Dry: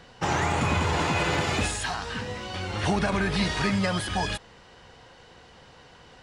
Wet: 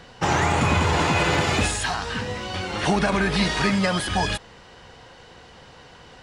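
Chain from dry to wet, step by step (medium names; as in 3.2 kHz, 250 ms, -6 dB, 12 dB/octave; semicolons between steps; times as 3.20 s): 2.61–4.07 s: peaking EQ 91 Hz -13.5 dB 0.52 oct; trim +4.5 dB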